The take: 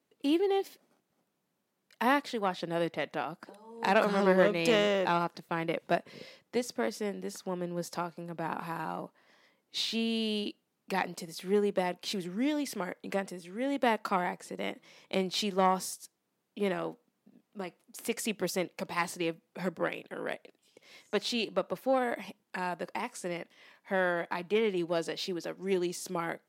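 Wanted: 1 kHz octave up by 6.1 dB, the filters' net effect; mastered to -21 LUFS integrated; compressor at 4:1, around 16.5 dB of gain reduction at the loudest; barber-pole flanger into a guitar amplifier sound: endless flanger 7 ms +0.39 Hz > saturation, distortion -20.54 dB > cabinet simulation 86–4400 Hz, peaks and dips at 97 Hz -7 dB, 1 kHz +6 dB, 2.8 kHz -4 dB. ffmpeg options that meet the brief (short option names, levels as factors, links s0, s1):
-filter_complex "[0:a]equalizer=f=1000:t=o:g=4,acompressor=threshold=0.0112:ratio=4,asplit=2[s0][s1];[s1]adelay=7,afreqshift=0.39[s2];[s0][s2]amix=inputs=2:normalize=1,asoftclip=threshold=0.02,highpass=86,equalizer=f=97:t=q:w=4:g=-7,equalizer=f=1000:t=q:w=4:g=6,equalizer=f=2800:t=q:w=4:g=-4,lowpass=f=4400:w=0.5412,lowpass=f=4400:w=1.3066,volume=17.8"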